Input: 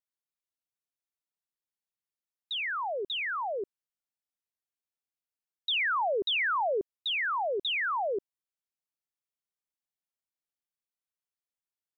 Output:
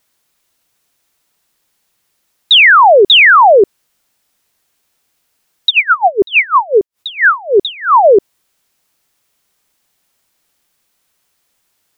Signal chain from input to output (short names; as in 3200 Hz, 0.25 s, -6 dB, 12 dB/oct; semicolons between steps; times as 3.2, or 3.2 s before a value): maximiser +31 dB; 5.69–8.03 dB-linear tremolo 8.3 Hz -> 2.3 Hz, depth 27 dB; gain -1 dB